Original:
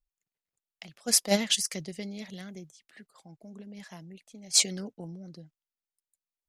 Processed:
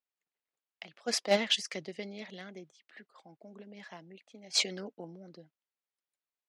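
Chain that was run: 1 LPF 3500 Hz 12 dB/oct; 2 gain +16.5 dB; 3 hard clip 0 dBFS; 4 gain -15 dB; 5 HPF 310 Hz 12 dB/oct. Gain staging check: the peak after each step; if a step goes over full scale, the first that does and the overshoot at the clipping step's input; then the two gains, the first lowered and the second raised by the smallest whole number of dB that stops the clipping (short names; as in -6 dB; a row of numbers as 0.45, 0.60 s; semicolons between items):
-12.0, +4.5, 0.0, -15.0, -12.0 dBFS; step 2, 4.5 dB; step 2 +11.5 dB, step 4 -10 dB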